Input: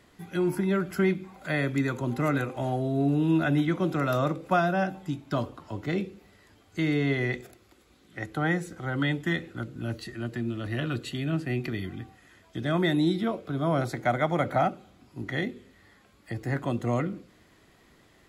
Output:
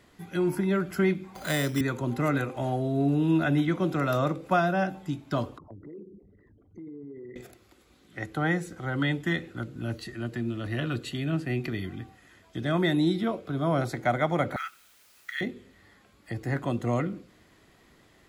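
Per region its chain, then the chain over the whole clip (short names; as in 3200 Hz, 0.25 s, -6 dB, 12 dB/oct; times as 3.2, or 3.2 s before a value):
1.35–1.81 careless resampling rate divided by 8×, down none, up hold + three-band squash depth 40%
5.58–7.36 formant sharpening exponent 3 + LPF 1000 Hz 6 dB/oct + compressor 4:1, threshold -43 dBFS
14.56–15.41 steep high-pass 1300 Hz 48 dB/oct + requantised 10-bit, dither triangular
whole clip: dry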